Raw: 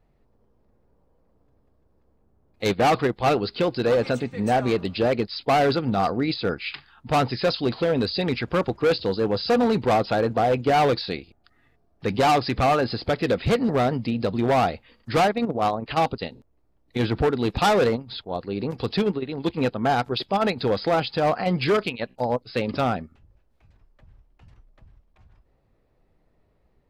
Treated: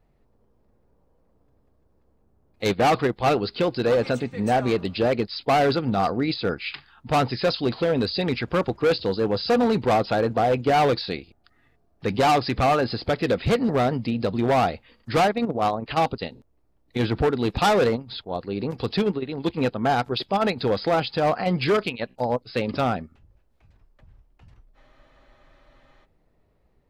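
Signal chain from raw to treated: spectral freeze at 24.77 s, 1.27 s

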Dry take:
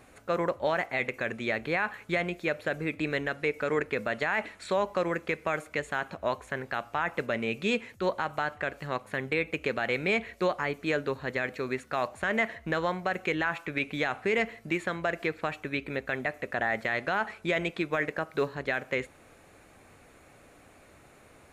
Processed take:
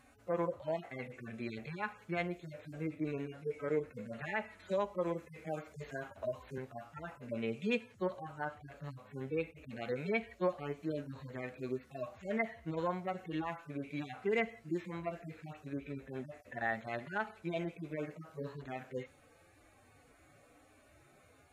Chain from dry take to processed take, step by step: harmonic-percussive separation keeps harmonic; 4.19–6.58 s: three bands compressed up and down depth 40%; trim -4.5 dB

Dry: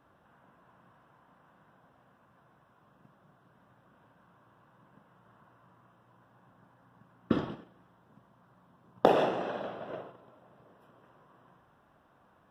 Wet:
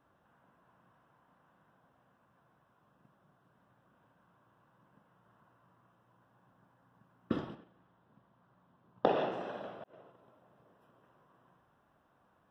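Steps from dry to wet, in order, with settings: 7.55–9.32 s: low-pass 4.8 kHz 24 dB/octave; 9.84–10.24 s: fade in; trim -6 dB

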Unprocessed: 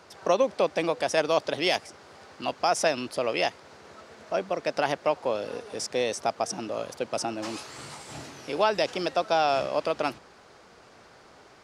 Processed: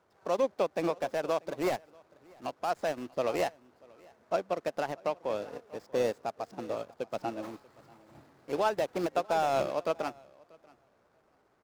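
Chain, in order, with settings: median filter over 15 samples; peak limiter -22 dBFS, peak gain reduction 10.5 dB; on a send: feedback delay 638 ms, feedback 17%, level -11 dB; on the sum: upward expansion 2.5:1, over -40 dBFS; trim +4 dB

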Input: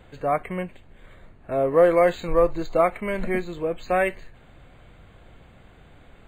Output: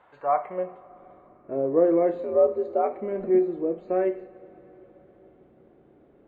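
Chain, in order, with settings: band-pass sweep 1 kHz -> 350 Hz, 0.24–0.95 s; 2.22–2.95 s: frequency shift +69 Hz; two-slope reverb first 0.46 s, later 4.7 s, from -19 dB, DRR 7 dB; trim +3.5 dB

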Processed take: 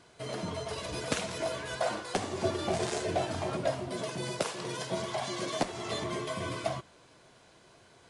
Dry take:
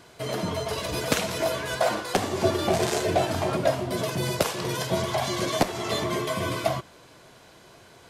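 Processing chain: 3.88–5.63 s: high-pass 140 Hz; trim -7 dB; MP3 56 kbps 24 kHz

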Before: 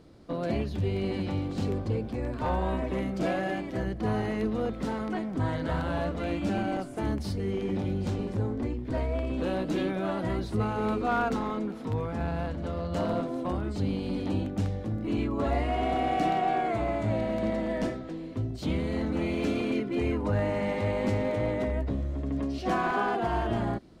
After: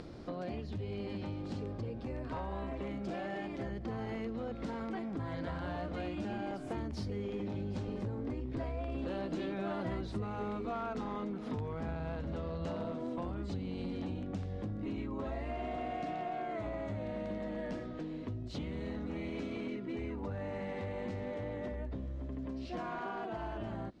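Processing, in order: Doppler pass-by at 9.96 s, 13 m/s, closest 3.1 m; upward compressor, threshold -47 dBFS; low-pass 6.4 kHz 12 dB/octave; compression 20:1, threshold -51 dBFS, peak gain reduction 25.5 dB; trim +17 dB

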